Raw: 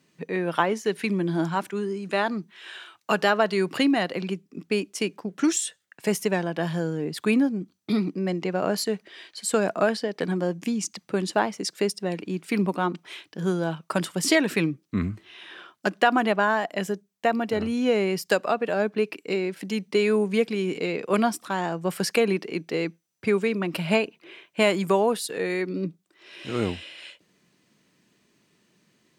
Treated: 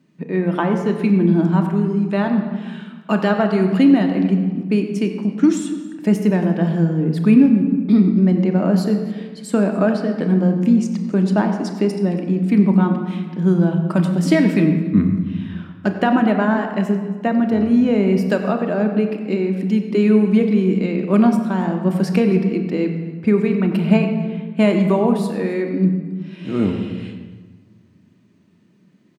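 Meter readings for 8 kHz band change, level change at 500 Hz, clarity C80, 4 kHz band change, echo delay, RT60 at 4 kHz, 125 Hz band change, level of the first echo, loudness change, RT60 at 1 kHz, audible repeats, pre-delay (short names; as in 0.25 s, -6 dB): n/a, +4.0 dB, 7.0 dB, -4.0 dB, 0.274 s, 0.95 s, +13.5 dB, -21.0 dB, +8.0 dB, 1.4 s, 1, 3 ms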